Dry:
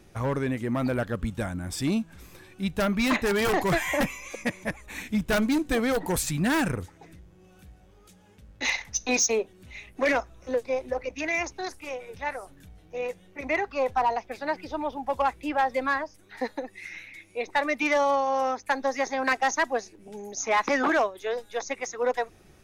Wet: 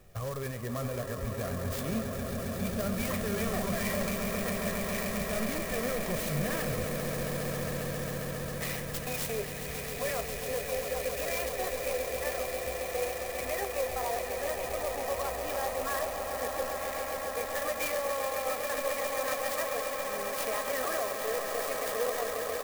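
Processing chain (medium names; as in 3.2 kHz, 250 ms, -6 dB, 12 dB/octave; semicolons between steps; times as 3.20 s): comb 1.7 ms, depth 76%; peak limiter -23 dBFS, peak gain reduction 10 dB; flange 0.68 Hz, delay 7.8 ms, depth 8.5 ms, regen +73%; on a send: echo with a slow build-up 135 ms, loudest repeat 8, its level -9 dB; on the sum: sampling jitter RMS 0.063 ms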